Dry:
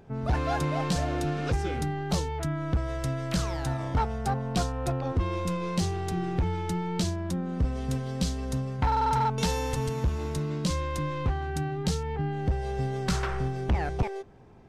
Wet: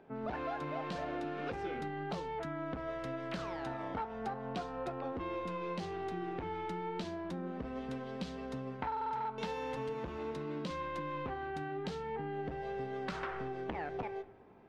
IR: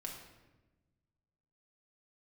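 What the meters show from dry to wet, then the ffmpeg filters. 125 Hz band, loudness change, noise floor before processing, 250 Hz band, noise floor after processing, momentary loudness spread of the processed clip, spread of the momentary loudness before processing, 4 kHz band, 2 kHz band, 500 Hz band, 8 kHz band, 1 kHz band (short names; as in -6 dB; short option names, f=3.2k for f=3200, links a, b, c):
-18.5 dB, -10.0 dB, -34 dBFS, -10.0 dB, -45 dBFS, 2 LU, 4 LU, -12.5 dB, -6.5 dB, -6.0 dB, -23.0 dB, -7.5 dB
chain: -filter_complex "[0:a]asplit=2[a][b];[1:a]atrim=start_sample=2205[c];[b][c]afir=irnorm=-1:irlink=0,volume=-11.5dB[d];[a][d]amix=inputs=2:normalize=0,flanger=delay=3.1:depth=7.6:regen=81:speed=0.38:shape=triangular,acrossover=split=210 3600:gain=0.126 1 0.0891[e][f][g];[e][f][g]amix=inputs=3:normalize=0,acompressor=threshold=-35dB:ratio=6"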